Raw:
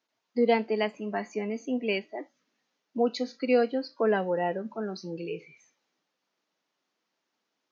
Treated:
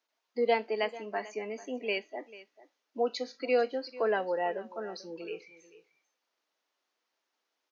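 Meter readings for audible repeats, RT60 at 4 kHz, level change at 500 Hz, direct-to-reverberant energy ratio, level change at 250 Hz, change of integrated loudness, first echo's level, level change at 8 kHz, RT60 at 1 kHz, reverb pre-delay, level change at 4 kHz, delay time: 1, none, -3.0 dB, none, -10.5 dB, -3.5 dB, -18.0 dB, n/a, none, none, -1.5 dB, 0.442 s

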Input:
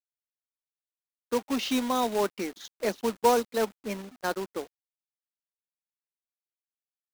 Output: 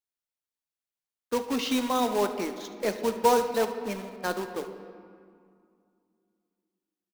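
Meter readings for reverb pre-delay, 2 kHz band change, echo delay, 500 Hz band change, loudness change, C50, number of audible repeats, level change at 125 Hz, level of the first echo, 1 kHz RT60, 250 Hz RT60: 6 ms, +0.5 dB, 73 ms, +1.0 dB, +1.0 dB, 8.5 dB, 1, +1.0 dB, -17.0 dB, 2.2 s, 3.2 s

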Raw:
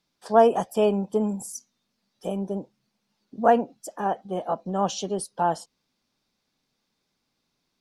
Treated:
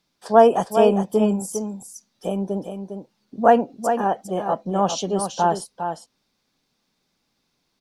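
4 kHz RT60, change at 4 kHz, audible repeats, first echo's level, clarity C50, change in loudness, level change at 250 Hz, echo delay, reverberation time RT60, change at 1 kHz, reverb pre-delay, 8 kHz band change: none, +4.5 dB, 1, -7.5 dB, none, +4.0 dB, +5.0 dB, 0.405 s, none, +4.5 dB, none, +4.5 dB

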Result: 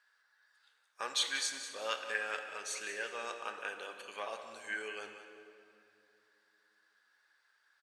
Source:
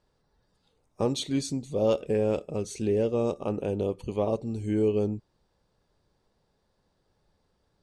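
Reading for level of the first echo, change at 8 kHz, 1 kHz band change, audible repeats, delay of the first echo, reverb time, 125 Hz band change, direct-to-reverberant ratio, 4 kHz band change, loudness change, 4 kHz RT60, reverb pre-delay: -12.0 dB, +1.0 dB, -3.0 dB, 1, 0.184 s, 2.7 s, under -40 dB, 5.5 dB, +2.5 dB, -10.0 dB, 1.9 s, 12 ms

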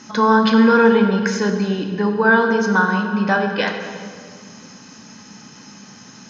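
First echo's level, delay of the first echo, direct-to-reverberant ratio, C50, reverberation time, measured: none, none, 4.0 dB, 6.0 dB, 2.1 s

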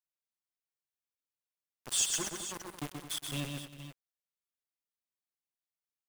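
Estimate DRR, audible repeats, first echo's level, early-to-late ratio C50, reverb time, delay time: none, 5, -5.0 dB, none, none, 0.129 s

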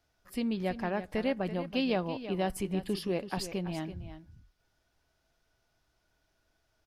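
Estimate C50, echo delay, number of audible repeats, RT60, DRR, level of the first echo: none, 0.332 s, 1, none, none, -12.0 dB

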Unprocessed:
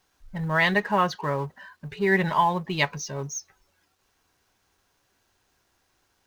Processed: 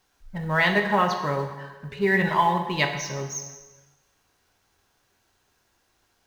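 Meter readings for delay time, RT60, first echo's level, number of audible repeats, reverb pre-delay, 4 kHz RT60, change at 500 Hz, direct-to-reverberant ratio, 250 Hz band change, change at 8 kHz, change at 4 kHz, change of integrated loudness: none, 1.2 s, none, none, 7 ms, 1.1 s, +1.0 dB, 4.5 dB, +1.0 dB, +1.5 dB, +1.5 dB, +1.0 dB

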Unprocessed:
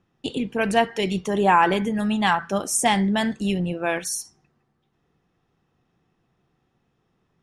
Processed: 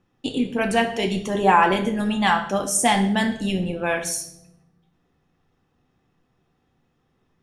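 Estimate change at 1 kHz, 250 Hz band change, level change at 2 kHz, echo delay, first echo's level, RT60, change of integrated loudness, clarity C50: +1.0 dB, +0.5 dB, +1.5 dB, none, none, 0.70 s, +1.0 dB, 10.5 dB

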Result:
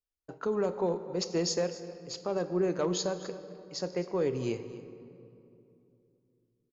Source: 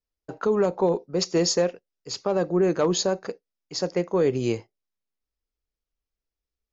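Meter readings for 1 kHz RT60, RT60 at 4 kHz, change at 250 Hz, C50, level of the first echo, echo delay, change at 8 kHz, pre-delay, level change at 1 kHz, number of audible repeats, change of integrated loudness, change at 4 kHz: 2.6 s, 1.7 s, -7.5 dB, 11.0 dB, -17.5 dB, 0.257 s, n/a, 26 ms, -7.5 dB, 1, -8.0 dB, -7.5 dB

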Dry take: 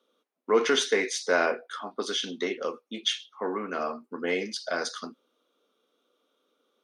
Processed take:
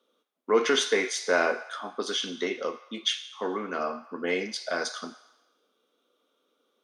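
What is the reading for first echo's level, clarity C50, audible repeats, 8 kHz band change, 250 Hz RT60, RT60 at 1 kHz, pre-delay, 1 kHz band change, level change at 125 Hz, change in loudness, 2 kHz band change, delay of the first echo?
none, 13.0 dB, none, +0.5 dB, 1.1 s, 1.0 s, 6 ms, 0.0 dB, 0.0 dB, 0.0 dB, +0.5 dB, none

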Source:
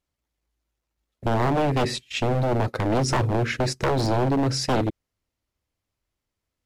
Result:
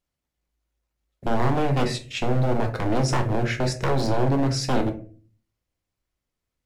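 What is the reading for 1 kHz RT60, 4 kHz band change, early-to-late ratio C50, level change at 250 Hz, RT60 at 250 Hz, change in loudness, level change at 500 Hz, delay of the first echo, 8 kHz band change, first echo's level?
0.30 s, -2.0 dB, 12.5 dB, 0.0 dB, 0.65 s, -0.5 dB, -1.0 dB, none, -1.5 dB, none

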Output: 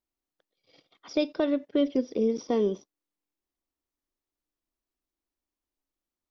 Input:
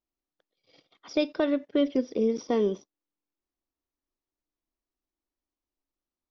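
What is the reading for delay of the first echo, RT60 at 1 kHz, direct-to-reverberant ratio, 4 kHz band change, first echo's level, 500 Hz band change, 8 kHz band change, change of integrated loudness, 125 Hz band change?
none, none, none, -1.0 dB, none, -0.5 dB, n/a, -0.5 dB, n/a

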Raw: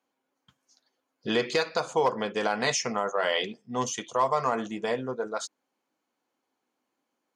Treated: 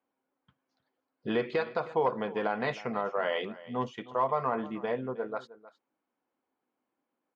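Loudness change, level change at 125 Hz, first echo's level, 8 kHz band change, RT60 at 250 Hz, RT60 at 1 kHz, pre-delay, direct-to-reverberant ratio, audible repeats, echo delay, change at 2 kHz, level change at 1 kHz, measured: -4.0 dB, -1.5 dB, -18.0 dB, under -25 dB, none, none, none, none, 1, 0.312 s, -5.5 dB, -3.5 dB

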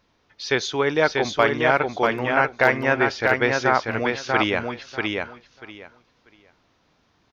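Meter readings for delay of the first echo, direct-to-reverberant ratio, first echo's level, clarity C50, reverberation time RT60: 0.64 s, none, -3.5 dB, none, none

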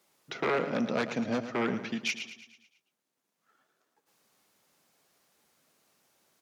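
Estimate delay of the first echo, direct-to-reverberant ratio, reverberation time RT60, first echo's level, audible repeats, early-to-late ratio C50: 0.11 s, none, none, -11.5 dB, 5, none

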